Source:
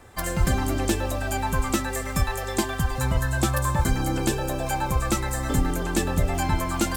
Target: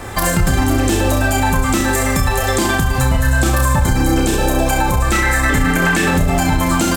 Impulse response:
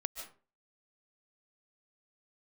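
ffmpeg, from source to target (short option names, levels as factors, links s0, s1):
-filter_complex "[0:a]asettb=1/sr,asplit=3[s0][s1][s2];[s0]atrim=end=5.124[s3];[s1]atrim=start=5.12:end=6.11,asetpts=PTS-STARTPTS,afade=t=in:d=0.004:c=qsin,afade=t=out:st=0.986:d=0.004:c=qsin,equalizer=f=1900:w=1.1:g=12.5[s4];[s2]atrim=start=6.106[s5];[s3][s4]acrossfade=d=0.004:c1=hsin:c2=qsin[s6];[s6][s5]acrossfade=d=0.004:c1=qsin:c2=hsin,aecho=1:1:30|64.5|104.2|149.8|202.3:0.631|0.398|0.251|0.158|0.1,acompressor=threshold=0.0126:ratio=2,alimiter=level_in=15.8:limit=0.891:release=50:level=0:latency=1,volume=0.596"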